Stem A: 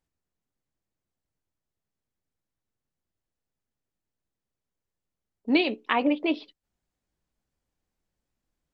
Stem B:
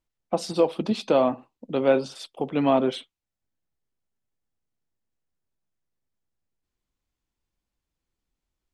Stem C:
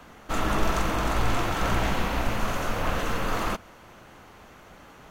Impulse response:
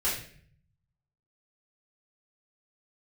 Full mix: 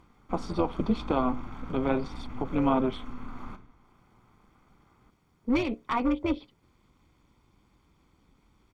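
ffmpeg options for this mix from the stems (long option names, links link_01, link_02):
-filter_complex "[0:a]volume=20.5dB,asoftclip=hard,volume=-20.5dB,volume=2dB[link_01];[1:a]highpass=frequency=110:poles=1,acompressor=mode=upward:threshold=-41dB:ratio=2.5,volume=0.5dB[link_02];[2:a]alimiter=limit=-20.5dB:level=0:latency=1:release=14,volume=-13.5dB,asplit=2[link_03][link_04];[link_04]volume=-16dB[link_05];[3:a]atrim=start_sample=2205[link_06];[link_05][link_06]afir=irnorm=-1:irlink=0[link_07];[link_01][link_02][link_03][link_07]amix=inputs=4:normalize=0,lowpass=frequency=1300:poles=1,aecho=1:1:0.9:0.71,tremolo=f=250:d=0.667"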